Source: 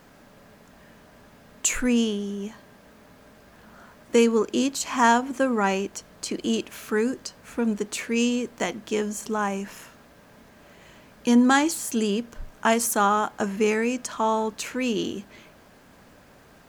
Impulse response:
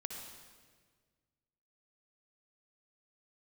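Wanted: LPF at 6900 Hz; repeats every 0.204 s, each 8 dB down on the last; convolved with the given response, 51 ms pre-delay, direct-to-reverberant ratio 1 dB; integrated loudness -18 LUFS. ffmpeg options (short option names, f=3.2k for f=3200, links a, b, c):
-filter_complex "[0:a]lowpass=6.9k,aecho=1:1:204|408|612|816|1020:0.398|0.159|0.0637|0.0255|0.0102,asplit=2[a][b];[1:a]atrim=start_sample=2205,adelay=51[c];[b][c]afir=irnorm=-1:irlink=0,volume=0.5dB[d];[a][d]amix=inputs=2:normalize=0,volume=3.5dB"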